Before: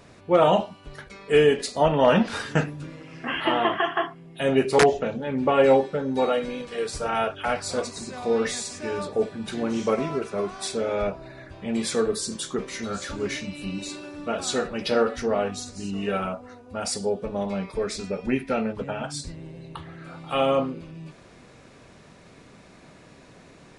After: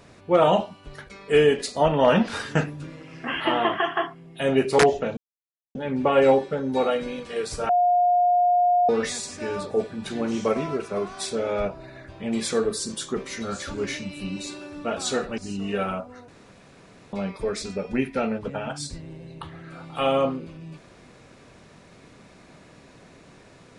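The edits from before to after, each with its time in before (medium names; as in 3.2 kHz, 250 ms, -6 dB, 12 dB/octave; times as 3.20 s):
5.17 s: insert silence 0.58 s
7.11–8.31 s: bleep 712 Hz -16 dBFS
14.80–15.72 s: delete
16.62–17.47 s: room tone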